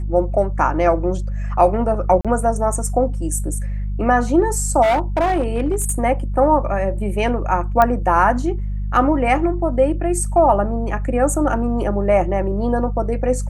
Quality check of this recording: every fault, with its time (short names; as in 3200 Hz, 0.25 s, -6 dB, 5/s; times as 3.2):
hum 50 Hz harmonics 4 -23 dBFS
2.21–2.25 gap 36 ms
4.82–5.93 clipped -13 dBFS
7.82 pop -4 dBFS